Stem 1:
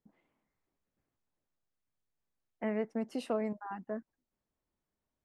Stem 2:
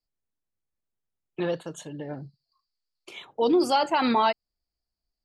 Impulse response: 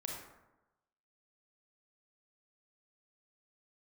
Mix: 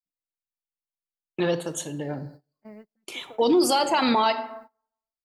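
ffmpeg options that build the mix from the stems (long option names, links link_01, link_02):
-filter_complex "[0:a]asplit=2[link_01][link_02];[link_02]adelay=3.5,afreqshift=-0.63[link_03];[link_01][link_03]amix=inputs=2:normalize=1,volume=-9.5dB,asplit=2[link_04][link_05];[link_05]volume=-20dB[link_06];[1:a]aemphasis=mode=production:type=50kf,volume=1.5dB,asplit=2[link_07][link_08];[link_08]volume=-7.5dB[link_09];[2:a]atrim=start_sample=2205[link_10];[link_06][link_09]amix=inputs=2:normalize=0[link_11];[link_11][link_10]afir=irnorm=-1:irlink=0[link_12];[link_04][link_07][link_12]amix=inputs=3:normalize=0,agate=range=-25dB:threshold=-44dB:ratio=16:detection=peak,alimiter=limit=-12.5dB:level=0:latency=1:release=44"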